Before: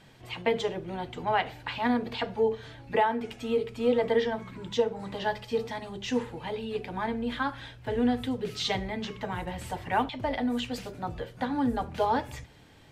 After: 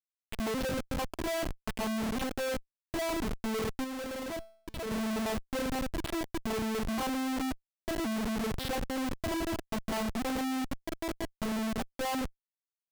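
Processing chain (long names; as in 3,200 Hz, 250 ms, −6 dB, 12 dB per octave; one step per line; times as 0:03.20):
vocoder with an arpeggio as carrier minor triad, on A3, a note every 536 ms
0:10.56–0:11.91: downward compressor 2.5 to 1, threshold −40 dBFS, peak gain reduction 11.5 dB
comparator with hysteresis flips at −39 dBFS
0:03.84–0:04.91: tuned comb filter 220 Hz, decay 0.55 s, harmonics all, mix 50%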